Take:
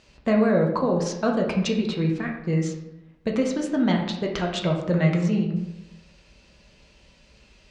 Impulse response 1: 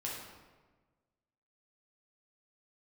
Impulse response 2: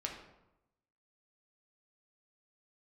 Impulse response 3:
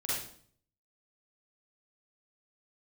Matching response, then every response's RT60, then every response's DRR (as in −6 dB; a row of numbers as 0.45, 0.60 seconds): 2; 1.3, 0.90, 0.55 seconds; −5.0, 0.0, −9.0 decibels